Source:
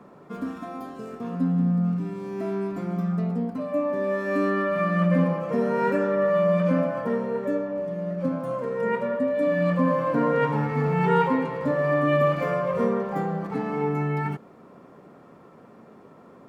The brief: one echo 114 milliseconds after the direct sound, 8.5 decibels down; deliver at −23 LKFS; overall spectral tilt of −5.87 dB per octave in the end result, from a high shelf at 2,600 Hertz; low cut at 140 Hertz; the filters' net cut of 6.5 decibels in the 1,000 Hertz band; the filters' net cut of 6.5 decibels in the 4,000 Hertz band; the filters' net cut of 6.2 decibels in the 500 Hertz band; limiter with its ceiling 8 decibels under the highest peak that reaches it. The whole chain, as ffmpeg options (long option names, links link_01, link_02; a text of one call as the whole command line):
ffmpeg -i in.wav -af "highpass=140,equalizer=frequency=500:width_type=o:gain=-5.5,equalizer=frequency=1000:width_type=o:gain=-5.5,highshelf=frequency=2600:gain=-4,equalizer=frequency=4000:width_type=o:gain=-6,alimiter=limit=-21.5dB:level=0:latency=1,aecho=1:1:114:0.376,volume=7dB" out.wav